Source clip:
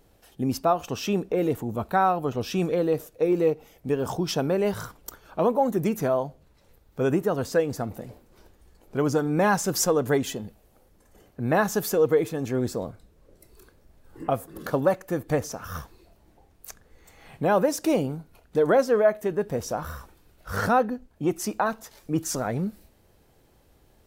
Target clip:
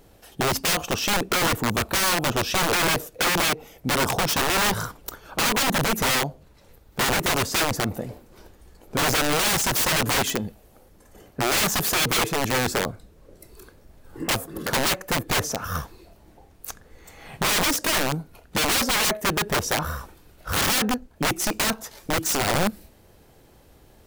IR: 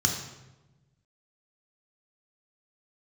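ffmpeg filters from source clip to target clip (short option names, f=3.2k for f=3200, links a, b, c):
-af "lowshelf=f=71:g=-2,aeval=exprs='(mod(15*val(0)+1,2)-1)/15':c=same,volume=7dB"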